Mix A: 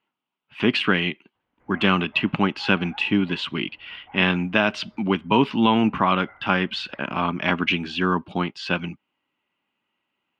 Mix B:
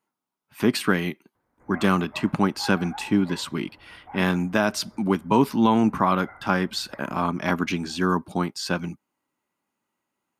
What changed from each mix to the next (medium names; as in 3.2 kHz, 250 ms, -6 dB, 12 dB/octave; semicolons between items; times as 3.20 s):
background +6.0 dB; master: remove resonant low-pass 2.9 kHz, resonance Q 4.5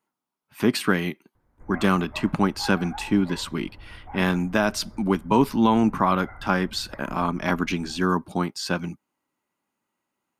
background: remove high-pass 320 Hz 6 dB/octave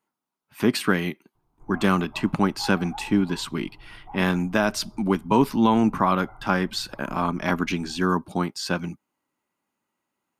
background: add static phaser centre 360 Hz, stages 8